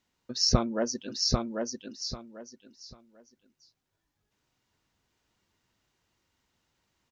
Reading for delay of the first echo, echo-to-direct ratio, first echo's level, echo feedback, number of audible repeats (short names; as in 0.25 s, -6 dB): 0.793 s, -3.5 dB, -3.5 dB, 23%, 3